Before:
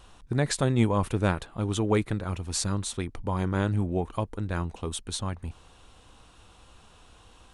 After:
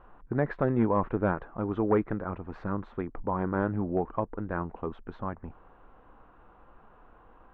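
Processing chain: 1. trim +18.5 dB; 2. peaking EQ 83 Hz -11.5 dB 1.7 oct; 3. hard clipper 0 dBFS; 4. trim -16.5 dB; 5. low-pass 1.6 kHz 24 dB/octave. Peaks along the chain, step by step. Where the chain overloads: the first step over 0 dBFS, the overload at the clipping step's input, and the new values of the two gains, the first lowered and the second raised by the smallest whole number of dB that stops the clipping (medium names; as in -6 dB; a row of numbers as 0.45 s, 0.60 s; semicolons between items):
+8.5 dBFS, +7.0 dBFS, 0.0 dBFS, -16.5 dBFS, -15.0 dBFS; step 1, 7.0 dB; step 1 +11.5 dB, step 4 -9.5 dB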